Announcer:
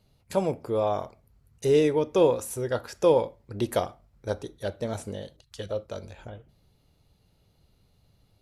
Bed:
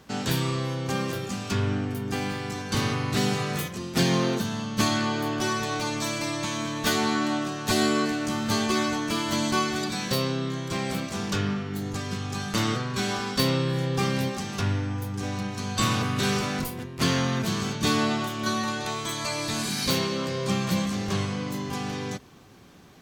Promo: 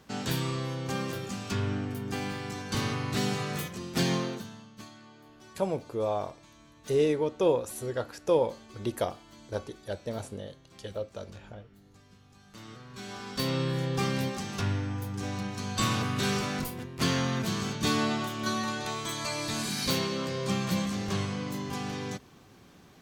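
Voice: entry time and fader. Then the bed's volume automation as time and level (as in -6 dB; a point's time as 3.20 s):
5.25 s, -4.0 dB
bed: 4.12 s -4.5 dB
4.94 s -26.5 dB
12.38 s -26.5 dB
13.62 s -3.5 dB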